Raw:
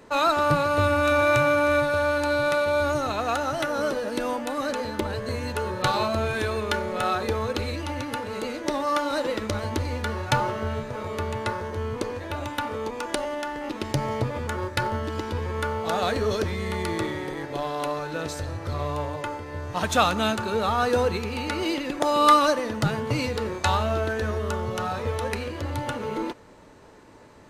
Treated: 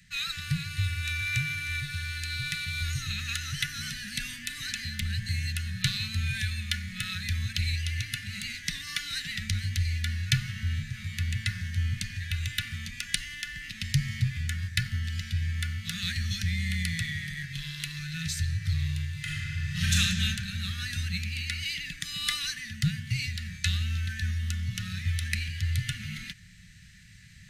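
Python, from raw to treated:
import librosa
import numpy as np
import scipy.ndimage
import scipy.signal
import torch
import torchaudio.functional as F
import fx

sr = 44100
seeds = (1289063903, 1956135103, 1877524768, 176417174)

y = fx.reverb_throw(x, sr, start_s=19.12, length_s=0.81, rt60_s=3.0, drr_db=-7.0)
y = scipy.signal.sosfilt(scipy.signal.cheby1(4, 1.0, [180.0, 1800.0], 'bandstop', fs=sr, output='sos'), y)
y = fx.rider(y, sr, range_db=4, speed_s=2.0)
y = y * 10.0 ** (1.5 / 20.0)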